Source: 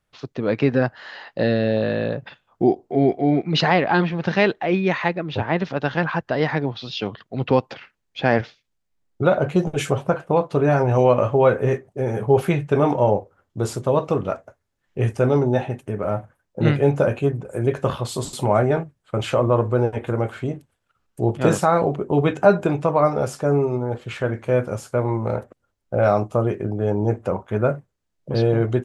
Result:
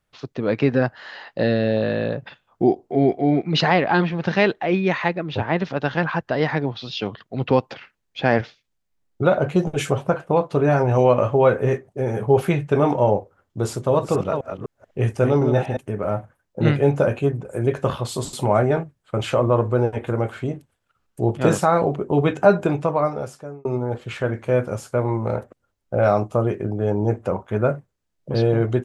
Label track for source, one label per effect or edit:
13.660000	15.770000	chunks repeated in reverse 250 ms, level -6.5 dB
22.740000	23.650000	fade out

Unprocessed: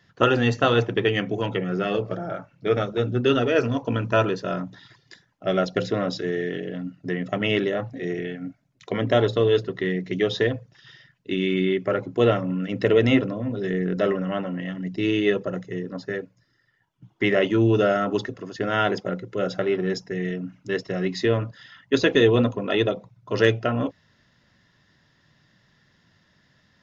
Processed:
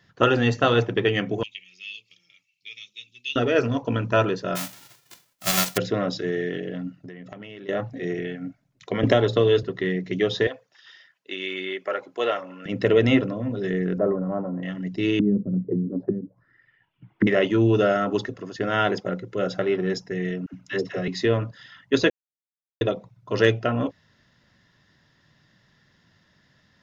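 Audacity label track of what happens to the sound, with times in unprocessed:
1.430000	3.360000	elliptic high-pass 2.4 kHz
4.550000	5.760000	formants flattened exponent 0.1
6.980000	7.690000	compression 12:1, threshold -36 dBFS
9.030000	9.630000	three bands compressed up and down depth 100%
10.470000	12.660000	high-pass 610 Hz
13.980000	14.630000	low-pass 1.1 kHz 24 dB/octave
15.190000	17.270000	touch-sensitive low-pass 220–2800 Hz down, full sweep at -26 dBFS
20.460000	21.080000	phase dispersion lows, late by 76 ms, half as late at 570 Hz
22.100000	22.810000	mute

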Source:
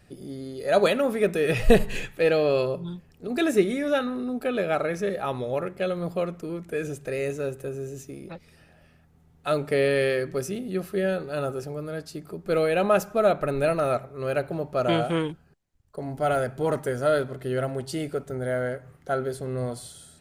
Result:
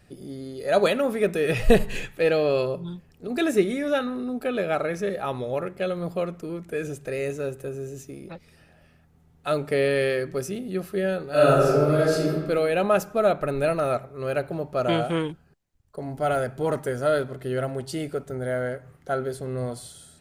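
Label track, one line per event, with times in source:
11.300000	12.290000	reverb throw, RT60 1.4 s, DRR -12 dB

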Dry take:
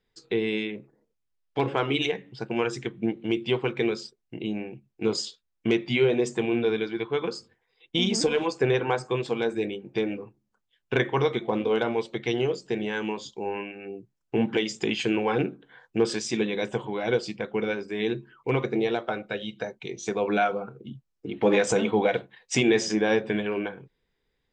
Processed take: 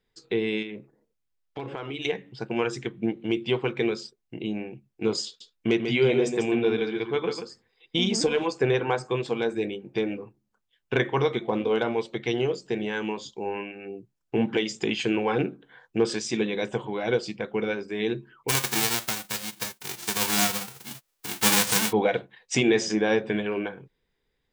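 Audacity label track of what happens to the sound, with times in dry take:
0.620000	2.050000	compression 4:1, threshold -32 dBFS
5.260000	8.070000	delay 143 ms -7 dB
18.480000	21.910000	formants flattened exponent 0.1

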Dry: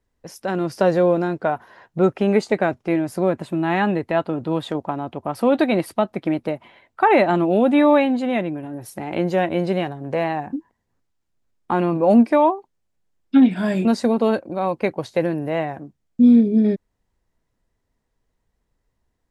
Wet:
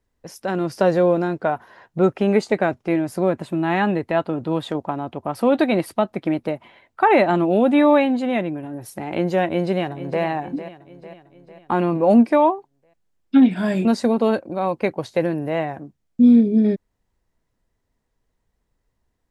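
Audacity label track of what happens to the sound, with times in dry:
9.450000	10.230000	echo throw 450 ms, feedback 55%, level -13 dB

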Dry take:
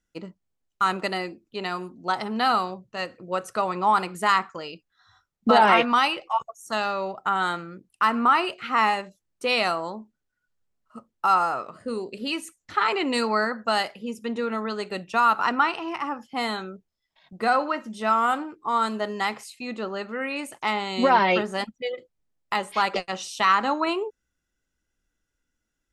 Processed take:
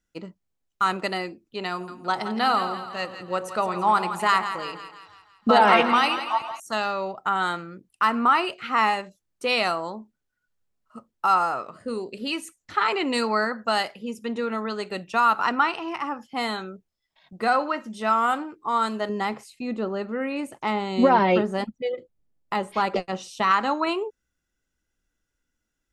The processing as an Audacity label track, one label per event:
1.710000	6.600000	two-band feedback delay split 830 Hz, lows 95 ms, highs 167 ms, level -10 dB
19.090000	23.510000	tilt shelf lows +6 dB, about 840 Hz

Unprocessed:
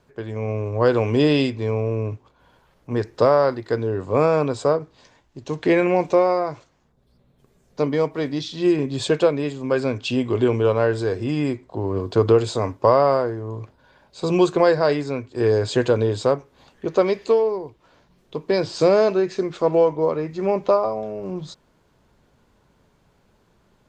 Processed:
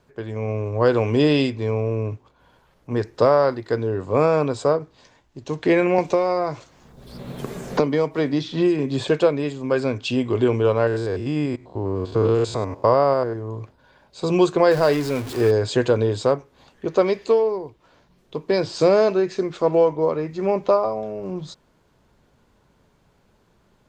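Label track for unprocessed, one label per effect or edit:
5.980000	9.080000	three bands compressed up and down depth 100%
10.870000	13.360000	spectrogram pixelated in time every 100 ms
14.710000	15.510000	jump at every zero crossing of -27.5 dBFS

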